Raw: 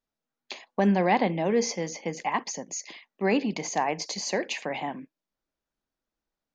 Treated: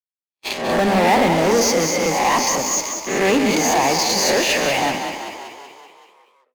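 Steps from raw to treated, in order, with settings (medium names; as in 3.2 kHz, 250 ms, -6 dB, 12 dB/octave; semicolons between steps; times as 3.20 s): reverse spectral sustain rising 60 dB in 0.64 s; peaking EQ 98 Hz -6.5 dB 1.1 oct; hum notches 50/100/150/200/250 Hz; in parallel at -5 dB: fuzz box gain 34 dB, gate -42 dBFS; on the sum: gate -26 dBFS, range -56 dB; on a send: frequency-shifting echo 190 ms, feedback 60%, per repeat +31 Hz, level -7 dB; on the sum: trim -1 dB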